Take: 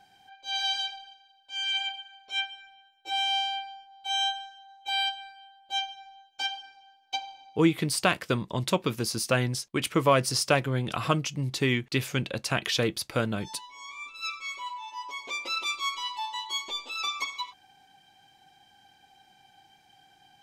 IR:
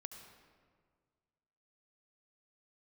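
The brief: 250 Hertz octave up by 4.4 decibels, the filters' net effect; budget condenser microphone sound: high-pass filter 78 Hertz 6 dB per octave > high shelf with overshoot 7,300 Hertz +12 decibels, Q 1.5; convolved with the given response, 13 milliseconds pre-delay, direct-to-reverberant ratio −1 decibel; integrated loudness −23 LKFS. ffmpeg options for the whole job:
-filter_complex "[0:a]equalizer=frequency=250:width_type=o:gain=6.5,asplit=2[link_01][link_02];[1:a]atrim=start_sample=2205,adelay=13[link_03];[link_02][link_03]afir=irnorm=-1:irlink=0,volume=5.5dB[link_04];[link_01][link_04]amix=inputs=2:normalize=0,highpass=frequency=78:poles=1,highshelf=frequency=7300:width_type=q:width=1.5:gain=12,volume=0.5dB"

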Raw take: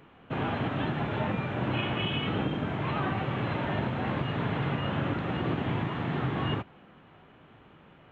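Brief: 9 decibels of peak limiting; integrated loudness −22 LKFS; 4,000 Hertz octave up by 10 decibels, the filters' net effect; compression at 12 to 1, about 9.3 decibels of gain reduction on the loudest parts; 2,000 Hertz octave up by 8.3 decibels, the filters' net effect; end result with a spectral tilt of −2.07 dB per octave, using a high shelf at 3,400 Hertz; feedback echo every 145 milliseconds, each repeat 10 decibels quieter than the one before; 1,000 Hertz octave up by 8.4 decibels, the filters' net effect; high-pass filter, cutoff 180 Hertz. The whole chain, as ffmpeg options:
ffmpeg -i in.wav -af "highpass=180,equalizer=frequency=1000:width_type=o:gain=8.5,equalizer=frequency=2000:width_type=o:gain=3.5,highshelf=frequency=3400:gain=8,equalizer=frequency=4000:width_type=o:gain=7,acompressor=threshold=-30dB:ratio=12,alimiter=level_in=6dB:limit=-24dB:level=0:latency=1,volume=-6dB,aecho=1:1:145|290|435|580:0.316|0.101|0.0324|0.0104,volume=15.5dB" out.wav

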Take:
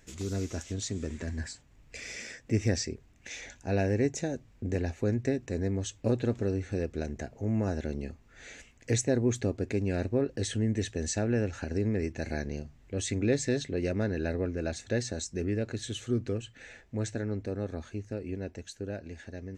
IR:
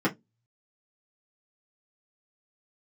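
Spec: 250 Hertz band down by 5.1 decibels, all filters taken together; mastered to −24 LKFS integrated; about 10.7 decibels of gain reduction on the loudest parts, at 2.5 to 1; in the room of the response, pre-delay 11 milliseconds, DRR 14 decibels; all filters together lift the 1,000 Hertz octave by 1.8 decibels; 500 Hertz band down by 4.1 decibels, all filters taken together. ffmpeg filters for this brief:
-filter_complex "[0:a]equalizer=frequency=250:width_type=o:gain=-5.5,equalizer=frequency=500:width_type=o:gain=-4.5,equalizer=frequency=1000:width_type=o:gain=6,acompressor=threshold=-42dB:ratio=2.5,asplit=2[link_01][link_02];[1:a]atrim=start_sample=2205,adelay=11[link_03];[link_02][link_03]afir=irnorm=-1:irlink=0,volume=-26dB[link_04];[link_01][link_04]amix=inputs=2:normalize=0,volume=18.5dB"

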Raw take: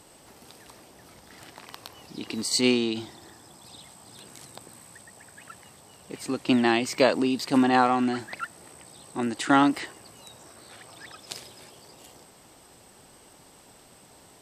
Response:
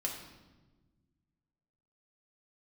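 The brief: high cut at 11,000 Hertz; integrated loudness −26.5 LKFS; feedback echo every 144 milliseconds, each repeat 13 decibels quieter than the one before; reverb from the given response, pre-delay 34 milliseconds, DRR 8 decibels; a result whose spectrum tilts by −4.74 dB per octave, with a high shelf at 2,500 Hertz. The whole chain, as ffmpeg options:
-filter_complex "[0:a]lowpass=11000,highshelf=frequency=2500:gain=-5.5,aecho=1:1:144|288|432:0.224|0.0493|0.0108,asplit=2[link_01][link_02];[1:a]atrim=start_sample=2205,adelay=34[link_03];[link_02][link_03]afir=irnorm=-1:irlink=0,volume=-10dB[link_04];[link_01][link_04]amix=inputs=2:normalize=0,volume=-2dB"

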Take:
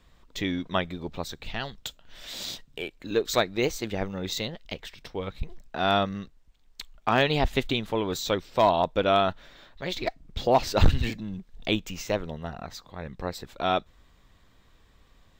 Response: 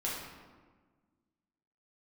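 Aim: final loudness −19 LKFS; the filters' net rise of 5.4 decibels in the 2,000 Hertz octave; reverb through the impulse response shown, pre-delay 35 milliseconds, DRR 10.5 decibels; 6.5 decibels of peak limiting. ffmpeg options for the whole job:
-filter_complex "[0:a]equalizer=frequency=2000:width_type=o:gain=7,alimiter=limit=-12.5dB:level=0:latency=1,asplit=2[link_01][link_02];[1:a]atrim=start_sample=2205,adelay=35[link_03];[link_02][link_03]afir=irnorm=-1:irlink=0,volume=-15dB[link_04];[link_01][link_04]amix=inputs=2:normalize=0,volume=9.5dB"

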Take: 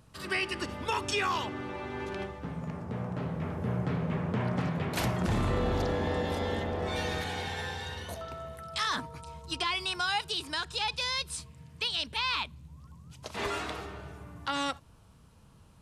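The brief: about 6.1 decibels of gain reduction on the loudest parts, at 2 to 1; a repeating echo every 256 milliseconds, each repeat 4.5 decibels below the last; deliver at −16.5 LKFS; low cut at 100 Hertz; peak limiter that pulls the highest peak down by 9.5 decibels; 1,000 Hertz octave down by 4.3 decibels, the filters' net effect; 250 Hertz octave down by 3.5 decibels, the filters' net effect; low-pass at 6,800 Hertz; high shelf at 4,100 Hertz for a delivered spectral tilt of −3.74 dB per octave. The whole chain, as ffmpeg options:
ffmpeg -i in.wav -af "highpass=100,lowpass=6800,equalizer=frequency=250:width_type=o:gain=-4.5,equalizer=frequency=1000:width_type=o:gain=-4.5,highshelf=frequency=4100:gain=-8.5,acompressor=threshold=-40dB:ratio=2,alimiter=level_in=9dB:limit=-24dB:level=0:latency=1,volume=-9dB,aecho=1:1:256|512|768|1024|1280|1536|1792|2048|2304:0.596|0.357|0.214|0.129|0.0772|0.0463|0.0278|0.0167|0.01,volume=25dB" out.wav

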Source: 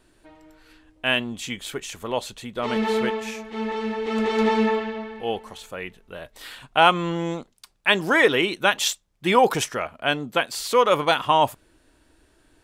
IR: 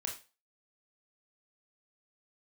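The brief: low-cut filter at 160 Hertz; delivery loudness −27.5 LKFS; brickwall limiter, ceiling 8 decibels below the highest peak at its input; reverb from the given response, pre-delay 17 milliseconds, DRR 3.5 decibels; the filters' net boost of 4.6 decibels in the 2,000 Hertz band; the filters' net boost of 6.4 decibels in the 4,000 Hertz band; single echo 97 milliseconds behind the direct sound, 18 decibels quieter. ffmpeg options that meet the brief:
-filter_complex "[0:a]highpass=160,equalizer=frequency=2000:width_type=o:gain=4,equalizer=frequency=4000:width_type=o:gain=7,alimiter=limit=-6dB:level=0:latency=1,aecho=1:1:97:0.126,asplit=2[link_01][link_02];[1:a]atrim=start_sample=2205,adelay=17[link_03];[link_02][link_03]afir=irnorm=-1:irlink=0,volume=-4dB[link_04];[link_01][link_04]amix=inputs=2:normalize=0,volume=-7dB"

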